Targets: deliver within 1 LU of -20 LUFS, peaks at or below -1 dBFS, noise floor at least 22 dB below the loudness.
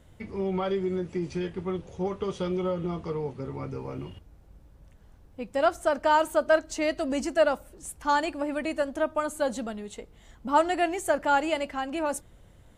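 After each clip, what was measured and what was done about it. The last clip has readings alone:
loudness -28.0 LUFS; peak level -10.5 dBFS; loudness target -20.0 LUFS
-> trim +8 dB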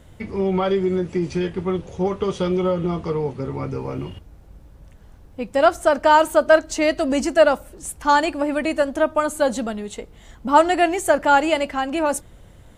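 loudness -20.0 LUFS; peak level -2.5 dBFS; noise floor -47 dBFS

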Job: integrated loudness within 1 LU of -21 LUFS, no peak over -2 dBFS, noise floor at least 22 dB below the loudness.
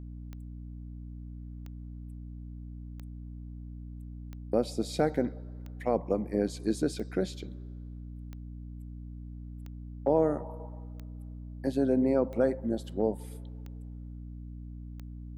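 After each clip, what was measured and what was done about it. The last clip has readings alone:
clicks found 12; hum 60 Hz; highest harmonic 300 Hz; hum level -40 dBFS; loudness -30.5 LUFS; peak level -12.5 dBFS; loudness target -21.0 LUFS
-> de-click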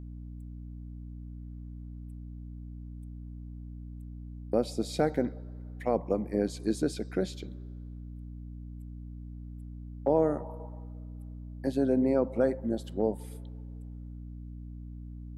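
clicks found 0; hum 60 Hz; highest harmonic 300 Hz; hum level -40 dBFS
-> de-hum 60 Hz, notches 5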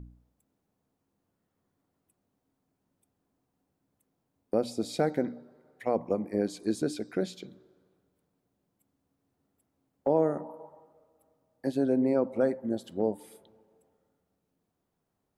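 hum not found; loudness -30.5 LUFS; peak level -13.0 dBFS; loudness target -21.0 LUFS
-> trim +9.5 dB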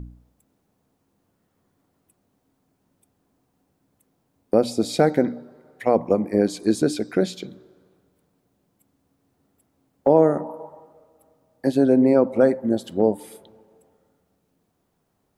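loudness -21.0 LUFS; peak level -3.5 dBFS; noise floor -71 dBFS

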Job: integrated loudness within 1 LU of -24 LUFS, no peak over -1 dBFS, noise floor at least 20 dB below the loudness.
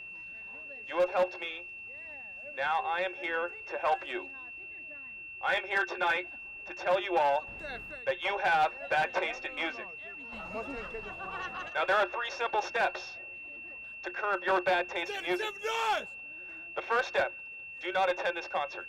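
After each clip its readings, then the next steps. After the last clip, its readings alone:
clipped samples 0.3%; clipping level -20.5 dBFS; steady tone 2.7 kHz; tone level -42 dBFS; loudness -32.5 LUFS; peak level -20.5 dBFS; loudness target -24.0 LUFS
-> clip repair -20.5 dBFS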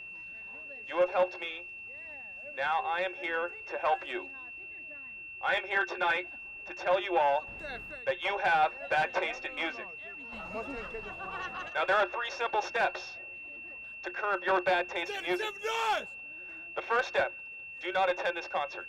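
clipped samples 0.0%; steady tone 2.7 kHz; tone level -42 dBFS
-> band-stop 2.7 kHz, Q 30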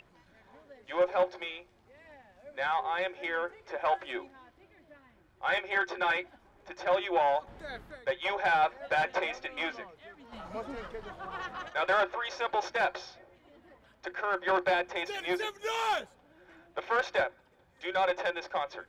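steady tone not found; loudness -31.5 LUFS; peak level -16.0 dBFS; loudness target -24.0 LUFS
-> trim +7.5 dB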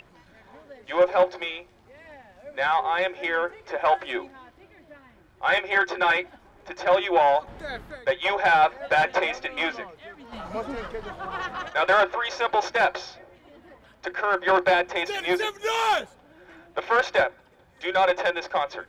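loudness -24.0 LUFS; peak level -8.5 dBFS; noise floor -56 dBFS

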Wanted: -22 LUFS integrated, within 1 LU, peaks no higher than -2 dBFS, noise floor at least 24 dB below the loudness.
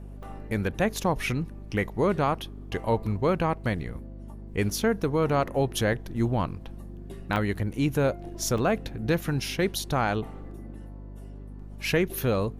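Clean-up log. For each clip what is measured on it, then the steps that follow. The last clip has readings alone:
dropouts 4; longest dropout 3.0 ms; hum 50 Hz; highest harmonic 250 Hz; hum level -39 dBFS; loudness -27.5 LUFS; peak level -13.0 dBFS; loudness target -22.0 LUFS
-> interpolate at 0.23/5.93/7.36/8.58 s, 3 ms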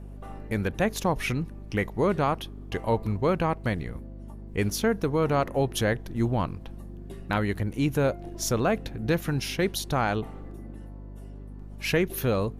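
dropouts 0; hum 50 Hz; highest harmonic 250 Hz; hum level -39 dBFS
-> de-hum 50 Hz, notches 5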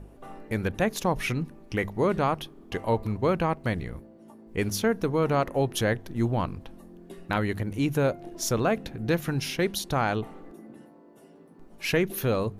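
hum not found; loudness -28.0 LUFS; peak level -12.5 dBFS; loudness target -22.0 LUFS
-> trim +6 dB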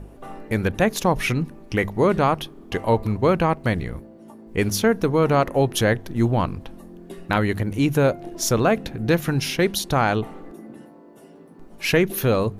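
loudness -22.0 LUFS; peak level -6.5 dBFS; noise floor -46 dBFS

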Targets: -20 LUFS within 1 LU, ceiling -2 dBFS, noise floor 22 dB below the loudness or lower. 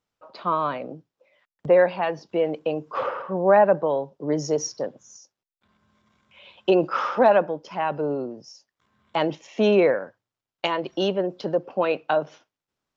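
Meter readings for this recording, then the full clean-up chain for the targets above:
loudness -23.5 LUFS; peak level -6.0 dBFS; loudness target -20.0 LUFS
-> trim +3.5 dB

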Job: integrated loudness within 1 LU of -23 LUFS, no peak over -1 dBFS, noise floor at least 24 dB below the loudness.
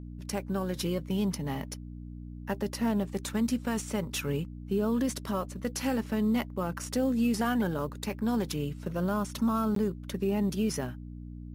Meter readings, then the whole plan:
dropouts 1; longest dropout 13 ms; hum 60 Hz; highest harmonic 300 Hz; hum level -40 dBFS; loudness -31.0 LUFS; peak level -17.5 dBFS; loudness target -23.0 LUFS
-> interpolate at 9.75 s, 13 ms; de-hum 60 Hz, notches 5; trim +8 dB

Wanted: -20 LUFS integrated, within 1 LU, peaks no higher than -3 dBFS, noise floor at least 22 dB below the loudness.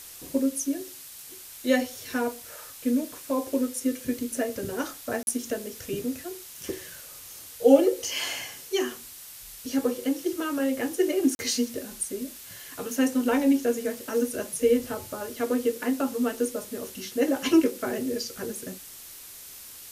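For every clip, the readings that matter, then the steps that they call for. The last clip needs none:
dropouts 2; longest dropout 41 ms; noise floor -45 dBFS; noise floor target -50 dBFS; loudness -27.5 LUFS; peak level -5.5 dBFS; loudness target -20.0 LUFS
-> interpolate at 5.23/11.35 s, 41 ms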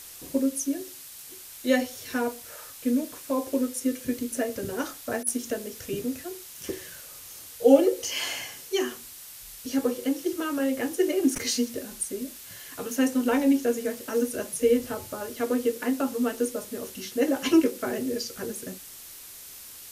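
dropouts 0; noise floor -45 dBFS; noise floor target -50 dBFS
-> noise reduction 6 dB, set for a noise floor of -45 dBFS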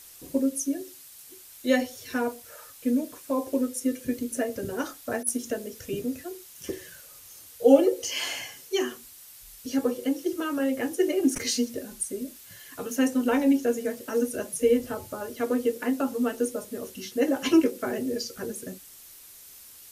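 noise floor -49 dBFS; noise floor target -50 dBFS
-> noise reduction 6 dB, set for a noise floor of -49 dBFS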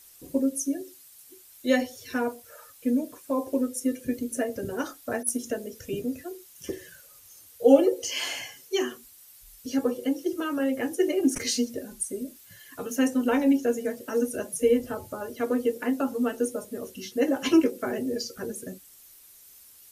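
noise floor -53 dBFS; loudness -27.5 LUFS; peak level -6.0 dBFS; loudness target -20.0 LUFS
-> trim +7.5 dB; peak limiter -3 dBFS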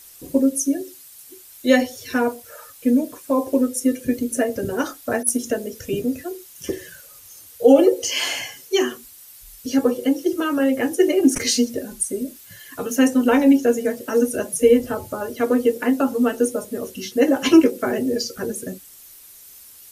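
loudness -20.5 LUFS; peak level -3.0 dBFS; noise floor -45 dBFS

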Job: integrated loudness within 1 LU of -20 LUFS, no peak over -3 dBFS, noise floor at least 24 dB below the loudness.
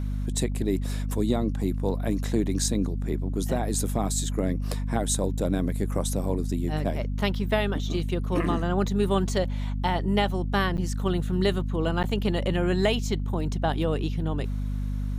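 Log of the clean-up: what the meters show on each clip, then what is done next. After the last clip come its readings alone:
dropouts 2; longest dropout 9.2 ms; hum 50 Hz; highest harmonic 250 Hz; hum level -26 dBFS; loudness -27.0 LUFS; peak level -10.0 dBFS; loudness target -20.0 LUFS
-> interpolate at 10.77/12.03 s, 9.2 ms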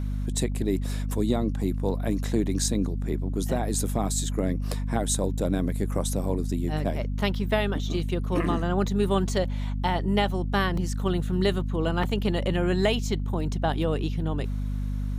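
dropouts 0; hum 50 Hz; highest harmonic 250 Hz; hum level -26 dBFS
-> hum notches 50/100/150/200/250 Hz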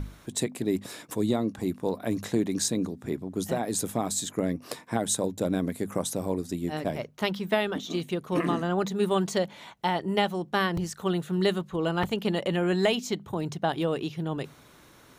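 hum not found; loudness -29.0 LUFS; peak level -10.0 dBFS; loudness target -20.0 LUFS
-> trim +9 dB; peak limiter -3 dBFS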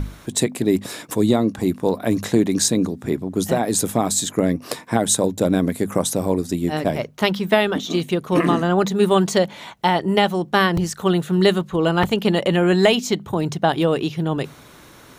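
loudness -20.0 LUFS; peak level -3.0 dBFS; noise floor -45 dBFS

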